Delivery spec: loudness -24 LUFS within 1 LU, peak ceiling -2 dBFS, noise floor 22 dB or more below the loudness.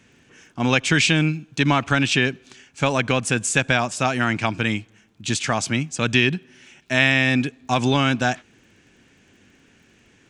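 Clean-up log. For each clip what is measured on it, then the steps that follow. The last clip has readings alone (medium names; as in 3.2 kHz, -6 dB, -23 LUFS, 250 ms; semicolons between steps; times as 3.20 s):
tick rate 26 per s; loudness -20.5 LUFS; peak level -2.5 dBFS; loudness target -24.0 LUFS
-> de-click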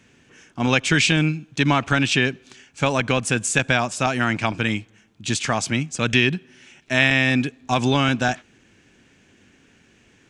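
tick rate 0 per s; loudness -20.5 LUFS; peak level -2.5 dBFS; loudness target -24.0 LUFS
-> trim -3.5 dB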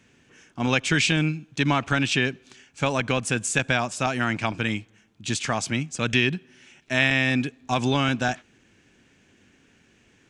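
loudness -24.0 LUFS; peak level -6.0 dBFS; noise floor -61 dBFS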